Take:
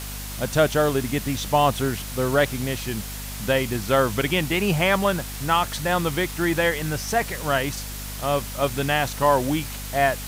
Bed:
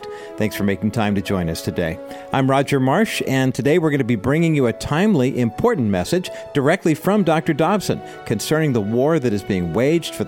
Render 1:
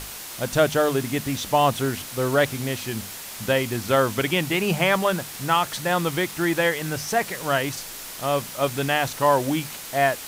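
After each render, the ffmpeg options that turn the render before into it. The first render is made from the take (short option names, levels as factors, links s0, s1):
-af "bandreject=f=50:t=h:w=6,bandreject=f=100:t=h:w=6,bandreject=f=150:t=h:w=6,bandreject=f=200:t=h:w=6,bandreject=f=250:t=h:w=6"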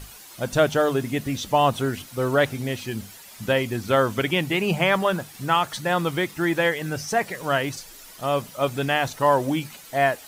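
-af "afftdn=nr=11:nf=-37"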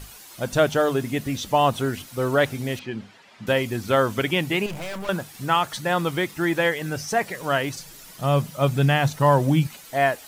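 -filter_complex "[0:a]asettb=1/sr,asplit=3[s0][s1][s2];[s0]atrim=end=2.794[s3];[s1]atrim=start=2.79:end=3.47,asetpts=PTS-STARTPTS,afade=t=in:d=0.004:c=qsin,afade=t=out:st=0.676:d=0.004:c=qsin,highpass=140,lowpass=2900[s4];[s2]atrim=start=3.466[s5];[s3][s4]acrossfade=d=0.004:c1=hsin:c2=qsin[s6];[s6][s5]acrossfade=d=0.004:c1=qsin:c2=hsin,asettb=1/sr,asplit=3[s7][s8][s9];[s7]atrim=end=4.664[s10];[s8]atrim=start=4.66:end=5.09,asetpts=PTS-STARTPTS,afade=t=in:d=0.004:c=qsin,afade=t=out:st=0.426:d=0.004:c=qsin,aeval=exprs='(tanh(35.5*val(0)+0.65)-tanh(0.65))/35.5':c=same[s11];[s9]atrim=start=5.086[s12];[s10][s11]acrossfade=d=0.004:c1=hsin:c2=qsin[s13];[s13][s12]acrossfade=d=0.004:c1=qsin:c2=hsin,asettb=1/sr,asplit=3[s14][s15][s16];[s14]atrim=end=7.794[s17];[s15]atrim=start=7.79:end=9.67,asetpts=PTS-STARTPTS,afade=t=in:d=0.004:c=qsin,afade=t=out:st=1.876:d=0.004:c=qsin,equalizer=f=150:t=o:w=0.77:g=13[s18];[s16]atrim=start=9.666[s19];[s17][s18]acrossfade=d=0.004:c1=hsin:c2=qsin[s20];[s20][s19]acrossfade=d=0.004:c1=qsin:c2=hsin"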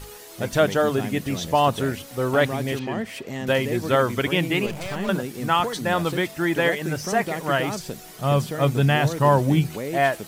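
-filter_complex "[1:a]volume=0.211[s0];[0:a][s0]amix=inputs=2:normalize=0"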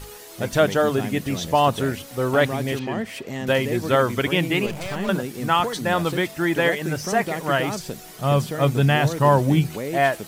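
-af "volume=1.12"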